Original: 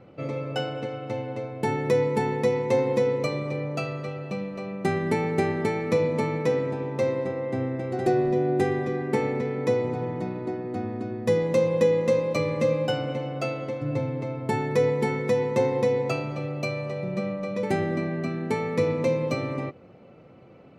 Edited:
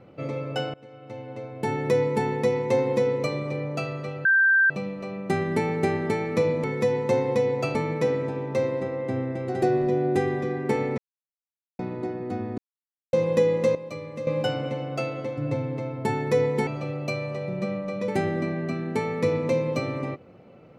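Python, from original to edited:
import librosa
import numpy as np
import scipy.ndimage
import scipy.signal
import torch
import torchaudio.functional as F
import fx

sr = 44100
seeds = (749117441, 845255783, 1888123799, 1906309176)

y = fx.edit(x, sr, fx.fade_in_from(start_s=0.74, length_s=1.09, floor_db=-22.5),
    fx.insert_tone(at_s=4.25, length_s=0.45, hz=1570.0, db=-15.5),
    fx.silence(start_s=9.42, length_s=0.81),
    fx.silence(start_s=11.02, length_s=0.55),
    fx.clip_gain(start_s=12.19, length_s=0.52, db=-10.5),
    fx.move(start_s=15.11, length_s=1.11, to_s=6.19), tone=tone)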